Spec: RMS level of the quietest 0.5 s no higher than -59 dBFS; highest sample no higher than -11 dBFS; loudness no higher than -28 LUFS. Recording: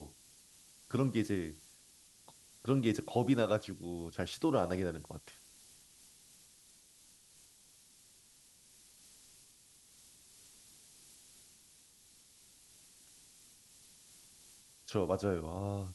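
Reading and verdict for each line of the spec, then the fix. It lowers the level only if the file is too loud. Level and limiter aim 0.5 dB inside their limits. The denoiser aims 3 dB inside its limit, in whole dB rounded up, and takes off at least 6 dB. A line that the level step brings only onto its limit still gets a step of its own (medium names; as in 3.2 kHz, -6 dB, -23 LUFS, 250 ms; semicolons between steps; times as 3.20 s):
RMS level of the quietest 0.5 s -63 dBFS: pass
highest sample -17.0 dBFS: pass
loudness -35.0 LUFS: pass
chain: none needed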